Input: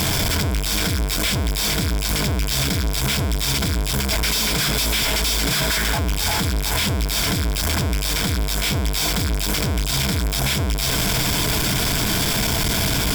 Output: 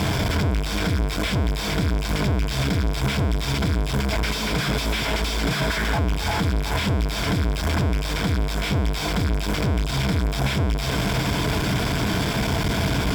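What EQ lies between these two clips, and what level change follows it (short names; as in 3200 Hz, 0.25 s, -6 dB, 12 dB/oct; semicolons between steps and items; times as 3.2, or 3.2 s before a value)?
HPF 46 Hz; LPF 1700 Hz 6 dB/oct; +1.0 dB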